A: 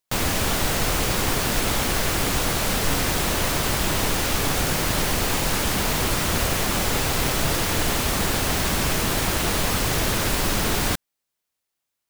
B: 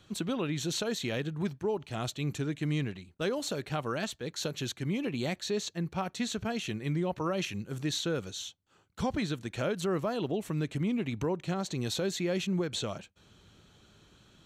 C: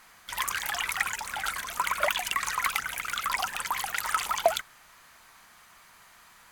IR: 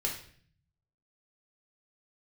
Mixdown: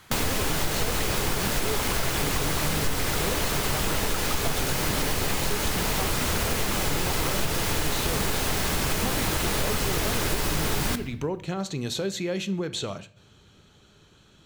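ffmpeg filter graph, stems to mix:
-filter_complex "[0:a]volume=1.12,asplit=2[s0][s1];[s1]volume=0.251[s2];[1:a]volume=1.19,asplit=3[s3][s4][s5];[s4]volume=0.237[s6];[2:a]volume=1.06[s7];[s5]apad=whole_len=287427[s8];[s7][s8]sidechaincompress=threshold=0.02:ratio=8:attack=16:release=390[s9];[3:a]atrim=start_sample=2205[s10];[s2][s6]amix=inputs=2:normalize=0[s11];[s11][s10]afir=irnorm=-1:irlink=0[s12];[s0][s3][s9][s12]amix=inputs=4:normalize=0,acompressor=threshold=0.0631:ratio=3"

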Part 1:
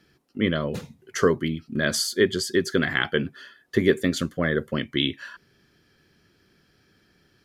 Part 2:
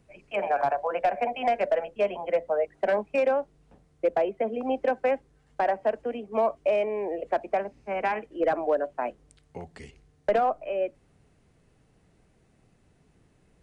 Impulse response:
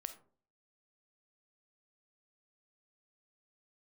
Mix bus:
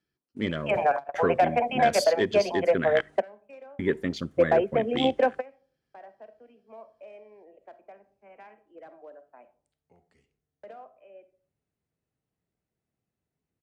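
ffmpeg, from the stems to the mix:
-filter_complex "[0:a]afwtdn=0.0178,volume=0.422,asplit=3[s0][s1][s2];[s0]atrim=end=3.01,asetpts=PTS-STARTPTS,afade=t=out:st=3.006:d=0.004:c=hsin[s3];[s1]atrim=start=3.01:end=3.79,asetpts=PTS-STARTPTS,volume=0[s4];[s2]atrim=start=3.79,asetpts=PTS-STARTPTS,afade=t=in:d=0.004:c=hsin[s5];[s3][s4][s5]concat=n=3:v=0:a=1,asplit=3[s6][s7][s8];[s7]volume=0.266[s9];[1:a]highpass=62,adelay=350,volume=1.33,asplit=2[s10][s11];[s11]volume=0.0631[s12];[s8]apad=whole_len=616101[s13];[s10][s13]sidechaingate=range=0.0126:threshold=0.00158:ratio=16:detection=peak[s14];[2:a]atrim=start_sample=2205[s15];[s9][s12]amix=inputs=2:normalize=0[s16];[s16][s15]afir=irnorm=-1:irlink=0[s17];[s6][s14][s17]amix=inputs=3:normalize=0"

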